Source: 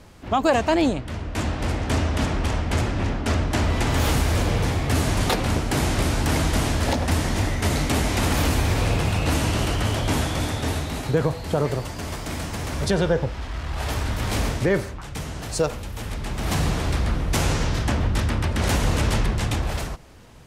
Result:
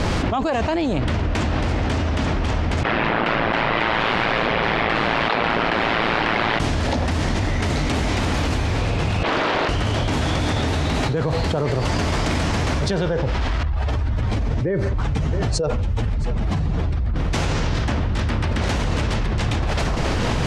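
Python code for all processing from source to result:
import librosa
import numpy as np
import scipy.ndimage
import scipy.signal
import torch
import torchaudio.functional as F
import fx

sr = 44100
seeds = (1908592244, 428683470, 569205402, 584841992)

y = fx.chain(x, sr, fx.highpass(hz=1500.0, slope=6),
    fx.air_absorb(metres=400.0),
    fx.ring_mod(carrier_hz=56.0), at=(2.83, 6.6))
y = fx.chain(y, sr, fx.bandpass_edges(low_hz=460.0, high_hz=2300.0),
    fx.doppler_dist(depth_ms=0.76), at=(9.23, 9.69))
y = fx.chain(y, sr, fx.spec_expand(power=1.5),
    fx.echo_single(ms=671, db=-20.0), at=(13.63, 17.16))
y = scipy.signal.sosfilt(scipy.signal.butter(2, 5600.0, 'lowpass', fs=sr, output='sos'), y)
y = fx.env_flatten(y, sr, amount_pct=100)
y = F.gain(torch.from_numpy(y), -5.0).numpy()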